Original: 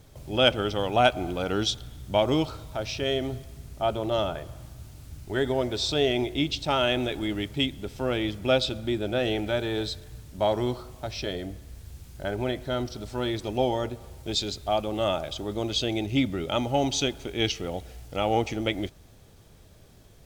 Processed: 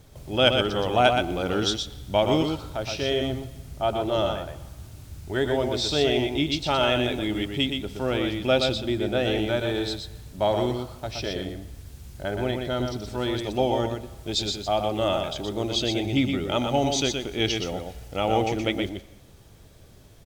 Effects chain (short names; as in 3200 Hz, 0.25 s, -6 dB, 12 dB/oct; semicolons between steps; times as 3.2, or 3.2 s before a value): echo 0.121 s -5 dB; on a send at -23 dB: reverb, pre-delay 90 ms; on the sum: gain +1 dB